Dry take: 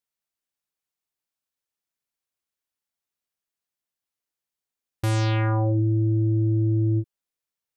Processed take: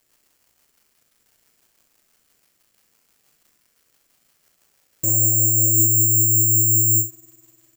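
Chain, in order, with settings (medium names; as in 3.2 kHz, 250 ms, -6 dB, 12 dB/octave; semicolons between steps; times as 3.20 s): elliptic low-pass 3.7 kHz; low-pass that closes with the level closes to 330 Hz, closed at -19.5 dBFS; high-pass 140 Hz 12 dB/octave; peaking EQ 1.3 kHz -13 dB 0.85 oct; in parallel at -8.5 dB: saturation -29.5 dBFS, distortion -12 dB; on the sum: crackle 580 per s -51 dBFS; rotary cabinet horn 6 Hz; early reflections 37 ms -8 dB, 65 ms -7 dB; spring tank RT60 2.6 s, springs 50 ms, chirp 65 ms, DRR 8.5 dB; careless resampling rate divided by 6×, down filtered, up zero stuff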